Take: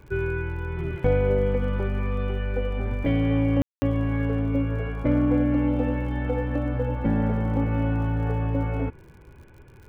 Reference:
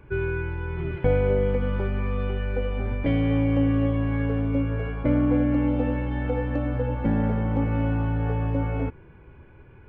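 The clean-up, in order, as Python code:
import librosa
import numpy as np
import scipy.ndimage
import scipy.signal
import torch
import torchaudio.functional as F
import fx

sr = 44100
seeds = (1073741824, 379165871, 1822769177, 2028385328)

y = fx.fix_declip(x, sr, threshold_db=-11.5)
y = fx.fix_declick_ar(y, sr, threshold=6.5)
y = fx.fix_ambience(y, sr, seeds[0], print_start_s=9.33, print_end_s=9.83, start_s=3.62, end_s=3.82)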